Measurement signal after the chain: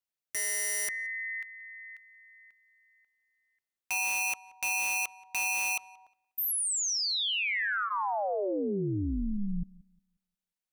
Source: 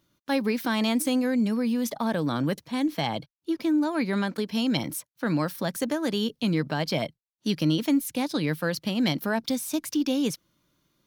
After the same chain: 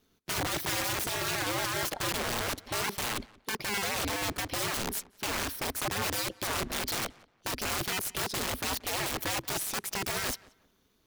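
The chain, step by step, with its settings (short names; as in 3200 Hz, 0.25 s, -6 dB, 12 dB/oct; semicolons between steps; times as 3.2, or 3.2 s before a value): notch 1200 Hz, Q 22; wrapped overs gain 27.5 dB; ring modulator 100 Hz; darkening echo 0.179 s, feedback 25%, low-pass 3100 Hz, level -22 dB; gain +3.5 dB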